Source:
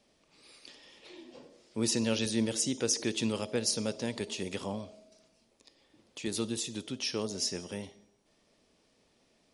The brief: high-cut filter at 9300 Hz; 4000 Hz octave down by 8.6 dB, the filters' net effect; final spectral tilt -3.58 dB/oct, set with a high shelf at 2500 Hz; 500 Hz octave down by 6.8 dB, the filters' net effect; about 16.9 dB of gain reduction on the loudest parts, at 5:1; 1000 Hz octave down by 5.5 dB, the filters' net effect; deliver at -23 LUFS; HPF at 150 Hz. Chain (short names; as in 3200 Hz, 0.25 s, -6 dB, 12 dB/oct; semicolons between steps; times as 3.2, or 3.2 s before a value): HPF 150 Hz; LPF 9300 Hz; bell 500 Hz -7.5 dB; bell 1000 Hz -3.5 dB; high shelf 2500 Hz -4.5 dB; bell 4000 Hz -7 dB; compressor 5:1, threshold -49 dBFS; gain +29.5 dB